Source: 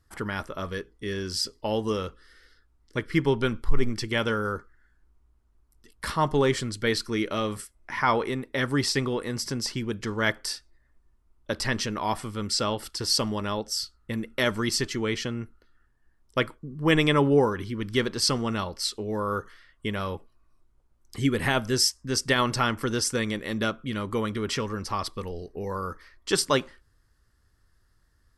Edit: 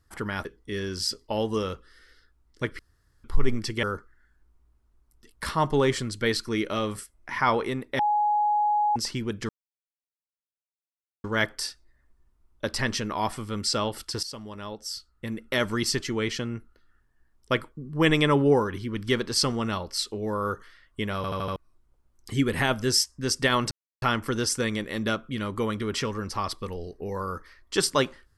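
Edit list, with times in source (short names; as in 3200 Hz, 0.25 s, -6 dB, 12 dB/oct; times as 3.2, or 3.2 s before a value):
0.45–0.79 cut
3.13–3.58 room tone
4.17–4.44 cut
8.6–9.57 bleep 836 Hz -20 dBFS
10.1 insert silence 1.75 s
13.09–14.58 fade in, from -16 dB
20.02 stutter in place 0.08 s, 5 plays
22.57 insert silence 0.31 s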